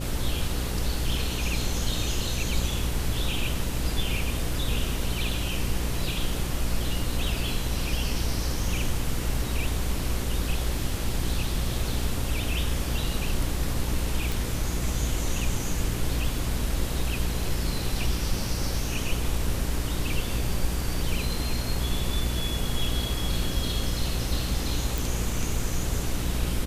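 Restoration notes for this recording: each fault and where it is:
buzz 60 Hz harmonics 9 -31 dBFS
14.32 pop
24.98 pop

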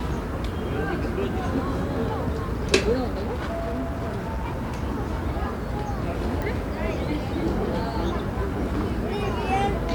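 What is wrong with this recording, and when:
3.13–4.83 clipped -24.5 dBFS
6.42 pop

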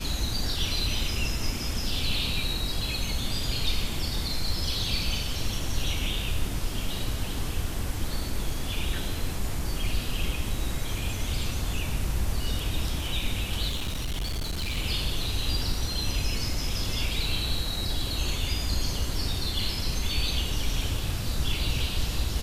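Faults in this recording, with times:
13.69–14.78 clipped -26.5 dBFS

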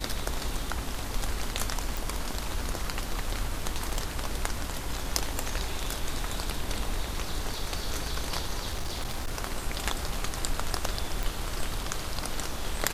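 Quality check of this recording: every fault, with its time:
1.97 pop
3.68–4.06 clipped -22.5 dBFS
8.71–9.35 clipped -27 dBFS
11.23 pop

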